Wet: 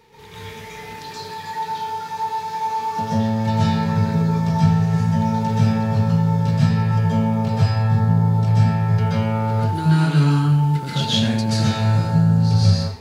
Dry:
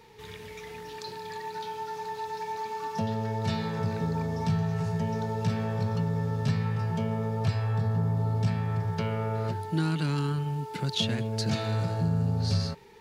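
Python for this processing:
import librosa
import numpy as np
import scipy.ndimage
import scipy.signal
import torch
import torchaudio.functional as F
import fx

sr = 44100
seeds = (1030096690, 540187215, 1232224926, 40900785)

y = fx.rev_plate(x, sr, seeds[0], rt60_s=0.53, hf_ratio=0.95, predelay_ms=115, drr_db=-8.0)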